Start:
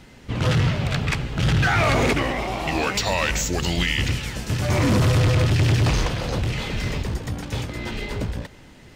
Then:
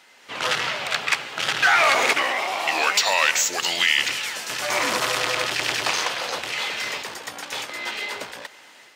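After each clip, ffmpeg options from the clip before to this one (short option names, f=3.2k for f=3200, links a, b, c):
-af "highpass=810,dynaudnorm=f=170:g=3:m=5.5dB"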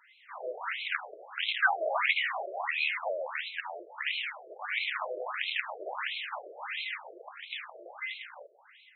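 -af "afftfilt=real='re*between(b*sr/1024,470*pow(3000/470,0.5+0.5*sin(2*PI*1.5*pts/sr))/1.41,470*pow(3000/470,0.5+0.5*sin(2*PI*1.5*pts/sr))*1.41)':imag='im*between(b*sr/1024,470*pow(3000/470,0.5+0.5*sin(2*PI*1.5*pts/sr))/1.41,470*pow(3000/470,0.5+0.5*sin(2*PI*1.5*pts/sr))*1.41)':win_size=1024:overlap=0.75,volume=-4.5dB"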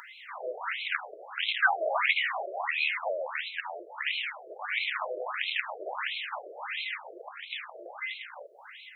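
-af "acompressor=mode=upward:threshold=-40dB:ratio=2.5,volume=1.5dB"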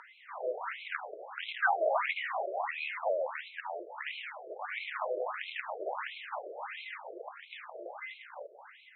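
-af "bandpass=f=480:t=q:w=0.66:csg=0,volume=1.5dB"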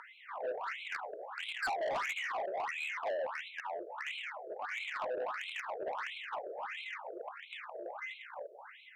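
-af "asoftclip=type=tanh:threshold=-33dB,volume=1dB"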